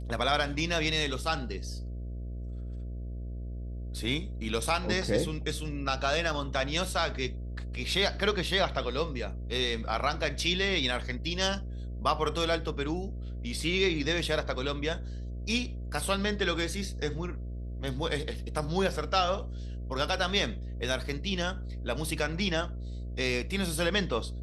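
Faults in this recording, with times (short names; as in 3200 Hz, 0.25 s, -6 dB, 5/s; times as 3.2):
buzz 60 Hz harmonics 11 -37 dBFS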